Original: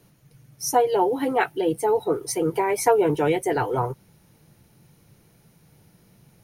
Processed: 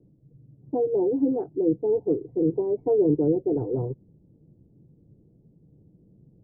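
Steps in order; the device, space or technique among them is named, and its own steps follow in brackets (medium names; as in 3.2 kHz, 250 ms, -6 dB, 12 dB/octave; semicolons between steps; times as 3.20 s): under water (low-pass 470 Hz 24 dB/octave; peaking EQ 290 Hz +5 dB 0.41 oct)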